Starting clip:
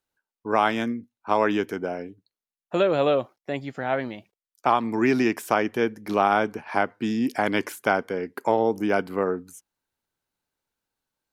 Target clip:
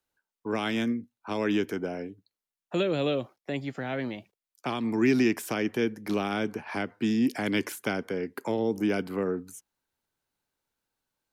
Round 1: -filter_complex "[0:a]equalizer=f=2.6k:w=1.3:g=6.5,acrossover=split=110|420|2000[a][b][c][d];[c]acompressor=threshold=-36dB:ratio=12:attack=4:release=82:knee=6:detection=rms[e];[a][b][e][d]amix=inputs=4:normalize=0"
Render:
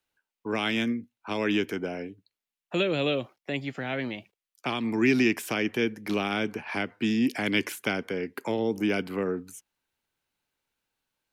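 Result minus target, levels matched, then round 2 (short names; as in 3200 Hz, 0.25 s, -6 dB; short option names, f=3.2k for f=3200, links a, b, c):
2000 Hz band +3.0 dB
-filter_complex "[0:a]acrossover=split=110|420|2000[a][b][c][d];[c]acompressor=threshold=-36dB:ratio=12:attack=4:release=82:knee=6:detection=rms[e];[a][b][e][d]amix=inputs=4:normalize=0"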